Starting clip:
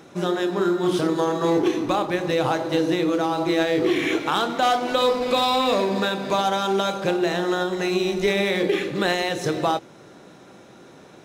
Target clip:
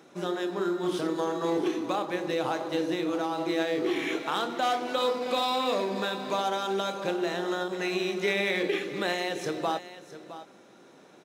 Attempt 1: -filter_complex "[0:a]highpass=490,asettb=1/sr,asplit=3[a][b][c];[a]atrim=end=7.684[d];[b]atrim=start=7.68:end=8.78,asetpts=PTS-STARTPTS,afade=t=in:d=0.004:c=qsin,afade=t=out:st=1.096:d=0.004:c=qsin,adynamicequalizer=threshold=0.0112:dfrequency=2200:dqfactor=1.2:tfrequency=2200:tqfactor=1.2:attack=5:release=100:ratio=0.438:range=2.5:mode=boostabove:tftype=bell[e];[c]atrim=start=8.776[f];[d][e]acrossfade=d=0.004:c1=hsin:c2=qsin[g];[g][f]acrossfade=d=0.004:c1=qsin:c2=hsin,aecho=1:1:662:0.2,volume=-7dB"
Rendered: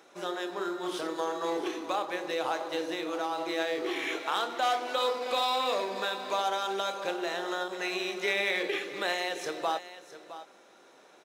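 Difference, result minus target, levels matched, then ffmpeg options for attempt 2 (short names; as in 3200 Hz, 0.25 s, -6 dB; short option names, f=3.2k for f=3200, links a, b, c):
250 Hz band -5.0 dB
-filter_complex "[0:a]highpass=190,asettb=1/sr,asplit=3[a][b][c];[a]atrim=end=7.684[d];[b]atrim=start=7.68:end=8.78,asetpts=PTS-STARTPTS,afade=t=in:d=0.004:c=qsin,afade=t=out:st=1.096:d=0.004:c=qsin,adynamicequalizer=threshold=0.0112:dfrequency=2200:dqfactor=1.2:tfrequency=2200:tqfactor=1.2:attack=5:release=100:ratio=0.438:range=2.5:mode=boostabove:tftype=bell[e];[c]atrim=start=8.776[f];[d][e]acrossfade=d=0.004:c1=hsin:c2=qsin[g];[g][f]acrossfade=d=0.004:c1=qsin:c2=hsin,aecho=1:1:662:0.2,volume=-7dB"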